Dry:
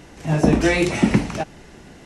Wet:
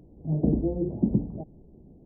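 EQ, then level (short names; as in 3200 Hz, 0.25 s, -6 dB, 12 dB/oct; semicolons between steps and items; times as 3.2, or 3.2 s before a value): Gaussian blur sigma 17 samples; -5.5 dB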